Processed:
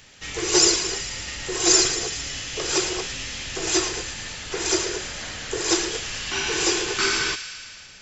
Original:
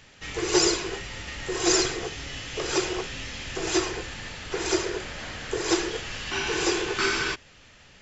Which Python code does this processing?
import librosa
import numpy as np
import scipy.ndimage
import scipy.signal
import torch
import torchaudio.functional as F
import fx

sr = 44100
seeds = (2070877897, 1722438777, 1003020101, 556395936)

y = fx.high_shelf(x, sr, hz=4400.0, db=10.5)
y = fx.echo_wet_highpass(y, sr, ms=112, feedback_pct=71, hz=1700.0, wet_db=-10.5)